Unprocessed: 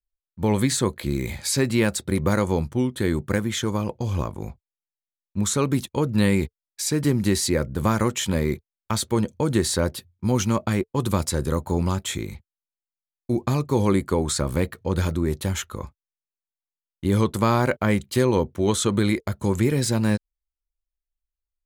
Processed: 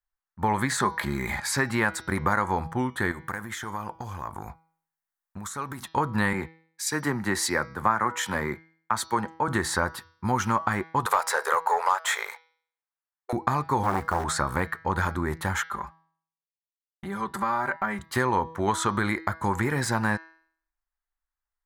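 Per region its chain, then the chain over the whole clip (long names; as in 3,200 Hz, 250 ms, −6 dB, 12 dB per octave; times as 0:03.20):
0:00.80–0:01.40: comb filter 4.9 ms, depth 41% + upward compression, threshold −22 dBFS
0:03.11–0:05.82: high-shelf EQ 6,900 Hz +11.5 dB + downward compressor 16 to 1, threshold −29 dBFS
0:06.33–0:09.48: high-pass filter 170 Hz 6 dB per octave + multiband upward and downward expander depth 70%
0:11.06–0:13.33: linear-phase brick-wall high-pass 400 Hz + leveller curve on the samples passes 2
0:13.83–0:14.24: low-shelf EQ 130 Hz +8.5 dB + floating-point word with a short mantissa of 2 bits + saturating transformer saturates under 620 Hz
0:15.63–0:17.99: downward compressor 2.5 to 1, threshold −34 dBFS + downward expander −44 dBFS + comb filter 5.1 ms, depth 97%
whole clip: flat-topped bell 1,200 Hz +15 dB; hum removal 162.3 Hz, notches 37; downward compressor 2.5 to 1, threshold −17 dBFS; level −4.5 dB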